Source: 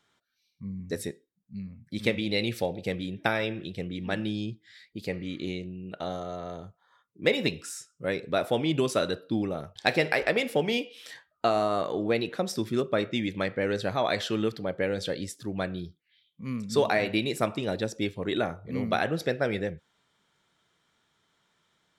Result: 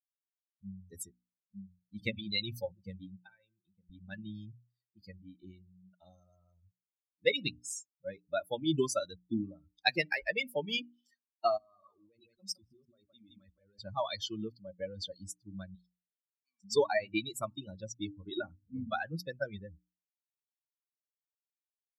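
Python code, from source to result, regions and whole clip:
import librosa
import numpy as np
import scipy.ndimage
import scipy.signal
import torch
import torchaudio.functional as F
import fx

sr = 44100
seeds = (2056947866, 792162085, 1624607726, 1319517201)

y = fx.chain(x, sr, fx.lowpass(hz=4800.0, slope=12),
    fx.comb_fb(f0_hz=520.0, decay_s=0.64, harmonics='all', damping=0.0, mix_pct=70),
    fx.band_squash(depth_pct=70), at=(3.23, 3.9))
y = fx.chain(y, sr, fx.echo_feedback(ms=165, feedback_pct=22, wet_db=-6),
    fx.level_steps(step_db=18), at=(11.57, 13.79))
y = fx.chain(y, sr, fx.weighting(curve='ITU-R 468'),
    fx.level_steps(step_db=12), at=(15.75, 16.64))
y = fx.bin_expand(y, sr, power=3.0)
y = fx.peak_eq(y, sr, hz=6000.0, db=6.5, octaves=1.6)
y = fx.hum_notches(y, sr, base_hz=60, count=5)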